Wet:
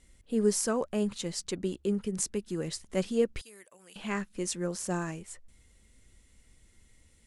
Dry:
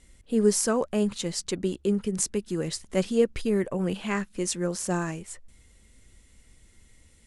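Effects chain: 3.41–3.96 s: differentiator; trim -4.5 dB

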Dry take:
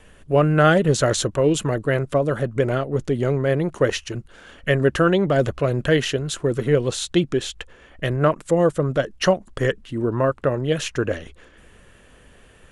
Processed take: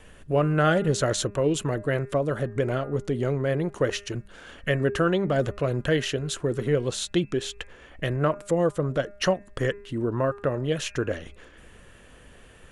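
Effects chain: de-hum 202.4 Hz, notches 13; in parallel at +1.5 dB: compression, threshold -30 dBFS, peak gain reduction 17.5 dB; on the sum: trim -7 dB

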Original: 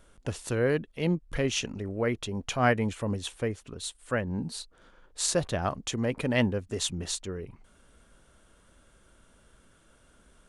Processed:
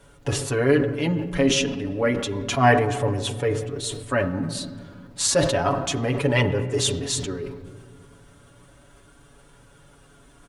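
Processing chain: flange 0.31 Hz, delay 2 ms, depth 2.2 ms, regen -38%; added noise brown -59 dBFS; high-pass 64 Hz 6 dB/octave; peaking EQ 990 Hz +2 dB 0.22 oct; comb 7.1 ms, depth 86%; on a send at -8 dB: treble shelf 2.2 kHz -11 dB + reverberation RT60 1.9 s, pre-delay 13 ms; on the sum: decay stretcher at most 61 dB/s; trim +7.5 dB

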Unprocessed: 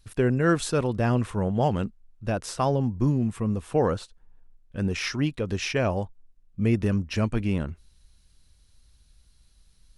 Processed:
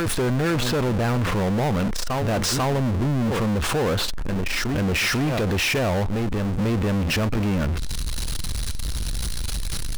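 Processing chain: low-pass that closes with the level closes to 2.9 kHz, closed at -22 dBFS; on a send: reverse echo 494 ms -19 dB; on the sum: power-law waveshaper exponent 0.35; level flattener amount 70%; trim -7 dB

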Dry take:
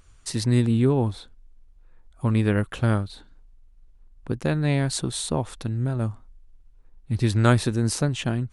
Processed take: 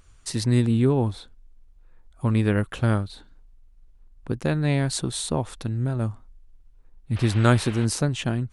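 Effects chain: 7.15–7.84 s: band noise 460–3200 Hz -41 dBFS

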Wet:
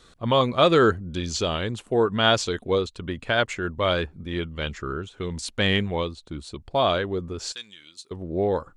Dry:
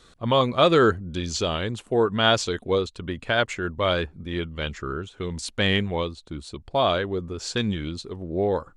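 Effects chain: 7.52–8.11 s: differentiator

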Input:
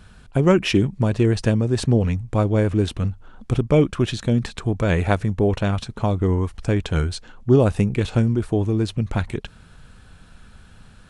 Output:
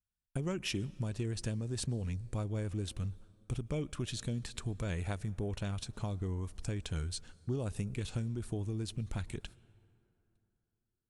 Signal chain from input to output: pre-emphasis filter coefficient 0.8; gate -50 dBFS, range -39 dB; bass shelf 170 Hz +8.5 dB; compression 3:1, threshold -32 dBFS, peak gain reduction 9.5 dB; on a send: reverberation RT60 3.1 s, pre-delay 98 ms, DRR 23 dB; on the sum: trim -2 dB

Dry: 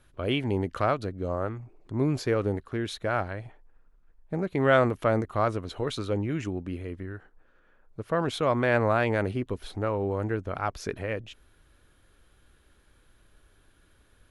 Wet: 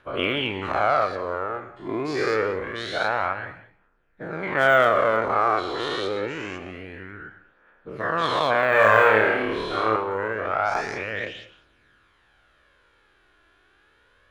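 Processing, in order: every event in the spectrogram widened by 240 ms; low-pass 2 kHz 12 dB/octave; de-esser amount 75%; tilt EQ +4 dB/octave; phaser 0.26 Hz, delay 3 ms, feedback 43%; 8.69–9.96 s: flutter echo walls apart 4.7 m, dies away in 0.64 s; gated-style reverb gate 240 ms flat, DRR 12 dB

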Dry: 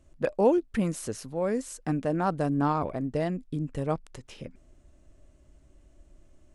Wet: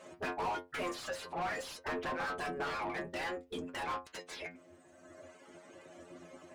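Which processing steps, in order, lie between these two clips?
reverb removal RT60 1.4 s; spectral gate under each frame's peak -15 dB weak; in parallel at +1 dB: compression, threshold -43 dBFS, peak gain reduction 11.5 dB; on the sum: inharmonic resonator 86 Hz, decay 0.23 s, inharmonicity 0.002; overdrive pedal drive 32 dB, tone 1.4 kHz, clips at -27 dBFS; endings held to a fixed fall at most 240 dB/s

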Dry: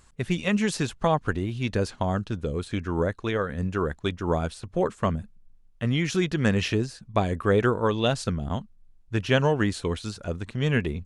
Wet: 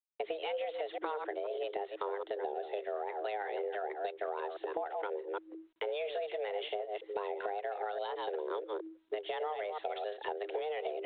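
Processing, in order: chunks repeated in reverse 163 ms, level -10 dB; recorder AGC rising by 12 dB/s; dynamic bell 350 Hz, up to +4 dB, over -38 dBFS, Q 3.1; rotary cabinet horn 6.3 Hz; tremolo saw up 0.79 Hz, depth 40%; peak limiter -18.5 dBFS, peak gain reduction 10 dB; 9.63–10.31 s: bass shelf 97 Hz -10 dB; frequency shift +97 Hz; gate with hold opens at -38 dBFS; frequency shift +210 Hz; compression 12:1, threshold -33 dBFS, peak gain reduction 12 dB; G.726 40 kbps 8 kHz

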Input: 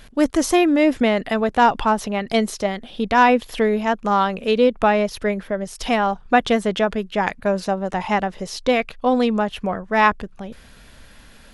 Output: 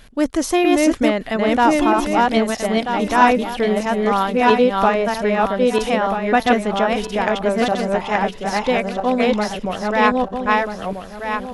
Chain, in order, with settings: backward echo that repeats 643 ms, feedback 48%, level -1 dB; trim -1 dB

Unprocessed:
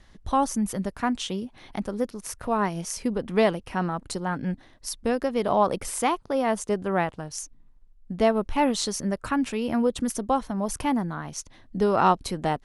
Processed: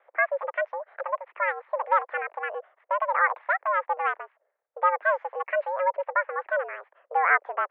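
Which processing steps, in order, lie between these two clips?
gliding tape speed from 180% -> 148%; mistuned SSB +180 Hz 360–2000 Hz

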